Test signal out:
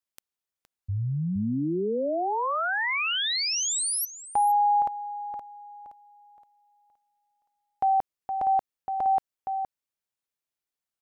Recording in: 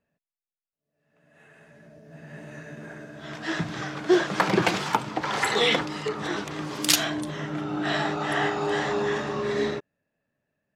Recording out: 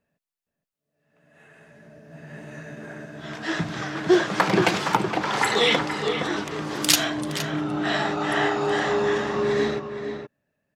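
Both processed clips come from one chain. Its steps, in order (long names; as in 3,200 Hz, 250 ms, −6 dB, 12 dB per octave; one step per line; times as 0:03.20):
slap from a distant wall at 80 metres, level −7 dB
level +2 dB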